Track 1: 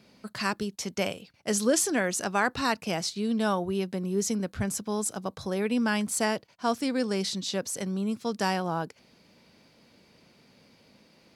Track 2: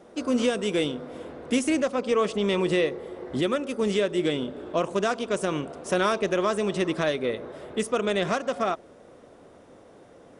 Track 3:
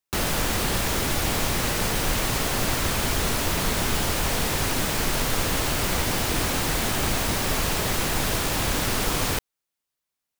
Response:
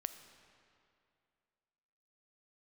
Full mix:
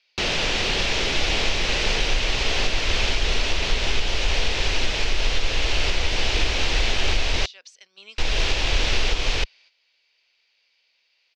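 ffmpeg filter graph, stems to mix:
-filter_complex "[0:a]highpass=1300,alimiter=level_in=1dB:limit=-24dB:level=0:latency=1:release=234,volume=-1dB,acompressor=threshold=-44dB:ratio=10,volume=-3dB[link_01];[2:a]asubboost=boost=8:cutoff=51,alimiter=limit=-8dB:level=0:latency=1:release=278,adelay=50,volume=-3.5dB,asplit=3[link_02][link_03][link_04];[link_02]atrim=end=7.46,asetpts=PTS-STARTPTS,afade=type=out:start_time=7.456:duration=0.004:curve=hsin[link_05];[link_03]atrim=start=7.46:end=8.18,asetpts=PTS-STARTPTS,volume=0[link_06];[link_04]atrim=start=8.18,asetpts=PTS-STARTPTS,afade=type=in:duration=0.004:curve=hsin[link_07];[link_05][link_06][link_07]concat=n=3:v=0:a=1[link_08];[link_01][link_08]amix=inputs=2:normalize=0,firequalizer=gain_entry='entry(280,0);entry(400,6);entry(1200,0);entry(2600,13);entry(5900,5);entry(11000,-28)':delay=0.05:min_phase=1,agate=range=-9dB:threshold=-50dB:ratio=16:detection=peak"

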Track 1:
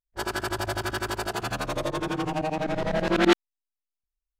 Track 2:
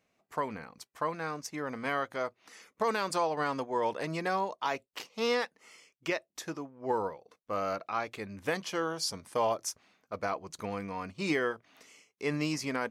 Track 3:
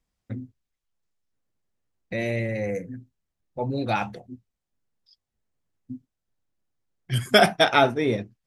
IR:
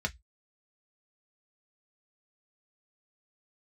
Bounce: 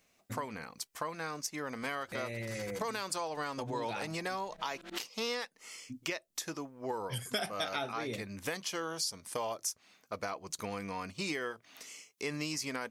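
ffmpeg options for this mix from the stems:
-filter_complex "[0:a]adelay=1650,volume=-18.5dB[link_01];[1:a]volume=1dB,asplit=2[link_02][link_03];[2:a]volume=-8.5dB[link_04];[link_03]apad=whole_len=266392[link_05];[link_01][link_05]sidechaincompress=threshold=-36dB:ratio=5:attack=38:release=830[link_06];[link_06][link_02][link_04]amix=inputs=3:normalize=0,highshelf=frequency=3100:gain=11.5,acompressor=threshold=-36dB:ratio=3"

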